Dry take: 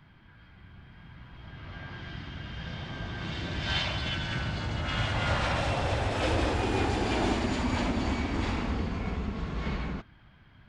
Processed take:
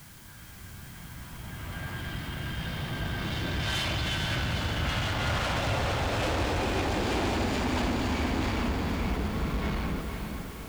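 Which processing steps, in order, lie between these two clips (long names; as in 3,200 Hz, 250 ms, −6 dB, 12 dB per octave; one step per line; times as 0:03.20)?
in parallel at −6 dB: bit-depth reduction 8 bits, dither triangular
on the sum: soft clipping −28.5 dBFS, distortion −8 dB
feedback delay with all-pass diffusion 464 ms, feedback 55%, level −5.5 dB
level +1.5 dB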